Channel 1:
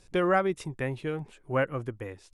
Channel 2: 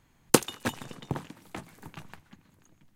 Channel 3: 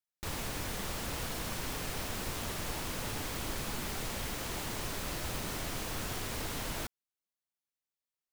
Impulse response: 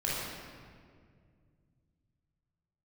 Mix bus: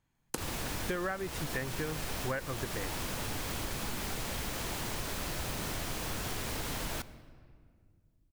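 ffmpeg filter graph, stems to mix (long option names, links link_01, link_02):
-filter_complex "[0:a]equalizer=frequency=1700:width_type=o:width=0.4:gain=9,adelay=750,volume=-0.5dB[link_01];[1:a]volume=-15dB,asplit=2[link_02][link_03];[link_03]volume=-13.5dB[link_04];[2:a]adelay=150,volume=1.5dB,asplit=2[link_05][link_06];[link_06]volume=-22.5dB[link_07];[3:a]atrim=start_sample=2205[link_08];[link_04][link_07]amix=inputs=2:normalize=0[link_09];[link_09][link_08]afir=irnorm=-1:irlink=0[link_10];[link_01][link_02][link_05][link_10]amix=inputs=4:normalize=0,acompressor=threshold=-31dB:ratio=12"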